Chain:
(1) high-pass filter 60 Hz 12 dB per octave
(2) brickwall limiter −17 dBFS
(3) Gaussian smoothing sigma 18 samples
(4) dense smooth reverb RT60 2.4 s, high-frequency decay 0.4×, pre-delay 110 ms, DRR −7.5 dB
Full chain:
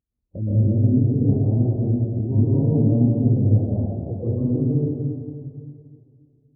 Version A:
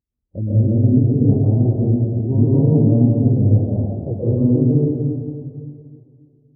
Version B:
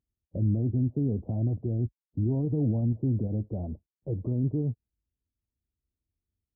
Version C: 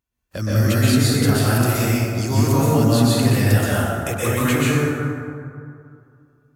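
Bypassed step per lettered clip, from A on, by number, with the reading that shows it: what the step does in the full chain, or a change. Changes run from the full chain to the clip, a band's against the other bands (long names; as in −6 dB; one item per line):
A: 2, average gain reduction 3.5 dB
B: 4, change in momentary loudness spread −4 LU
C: 3, change in momentary loudness spread −1 LU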